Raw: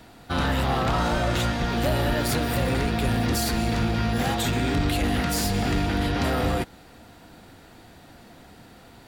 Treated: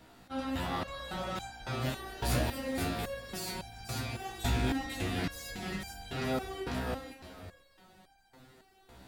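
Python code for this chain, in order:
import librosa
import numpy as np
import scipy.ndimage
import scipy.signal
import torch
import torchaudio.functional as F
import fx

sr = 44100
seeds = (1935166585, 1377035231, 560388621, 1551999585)

y = fx.echo_feedback(x, sr, ms=498, feedback_pct=28, wet_db=-4.0)
y = fx.resonator_held(y, sr, hz=3.6, low_hz=63.0, high_hz=790.0)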